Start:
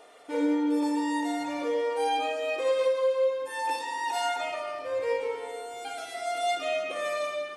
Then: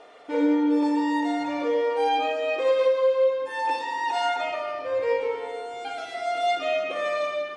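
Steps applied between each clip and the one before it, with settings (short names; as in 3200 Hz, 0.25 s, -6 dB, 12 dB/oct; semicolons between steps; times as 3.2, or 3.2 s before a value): air absorption 110 m; gain +4.5 dB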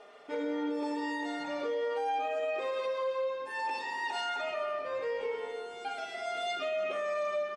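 comb 4.9 ms, depth 58%; limiter -20.5 dBFS, peak gain reduction 7 dB; gain -5.5 dB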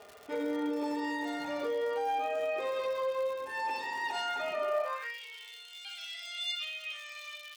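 crackle 190/s -41 dBFS; high-pass sweep 76 Hz -> 3100 Hz, 4.31–5.2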